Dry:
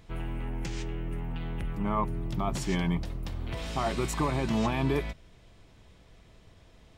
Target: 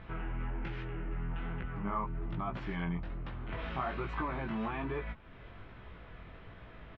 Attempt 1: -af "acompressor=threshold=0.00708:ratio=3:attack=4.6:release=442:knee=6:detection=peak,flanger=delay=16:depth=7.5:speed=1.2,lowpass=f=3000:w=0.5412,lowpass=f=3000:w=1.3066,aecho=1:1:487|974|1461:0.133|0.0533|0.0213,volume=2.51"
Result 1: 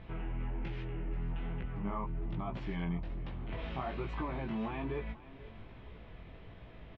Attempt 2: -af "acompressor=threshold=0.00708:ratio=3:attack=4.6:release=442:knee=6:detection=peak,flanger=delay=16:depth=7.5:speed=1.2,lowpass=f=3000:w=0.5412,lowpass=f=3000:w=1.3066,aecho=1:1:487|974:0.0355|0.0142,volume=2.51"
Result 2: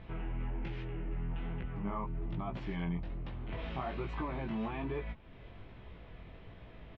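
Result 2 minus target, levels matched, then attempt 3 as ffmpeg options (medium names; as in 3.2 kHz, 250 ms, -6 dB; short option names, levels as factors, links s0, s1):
1 kHz band -3.0 dB
-af "acompressor=threshold=0.00708:ratio=3:attack=4.6:release=442:knee=6:detection=peak,flanger=delay=16:depth=7.5:speed=1.2,lowpass=f=3000:w=0.5412,lowpass=f=3000:w=1.3066,equalizer=f=1400:t=o:w=0.88:g=8.5,aecho=1:1:487|974:0.0355|0.0142,volume=2.51"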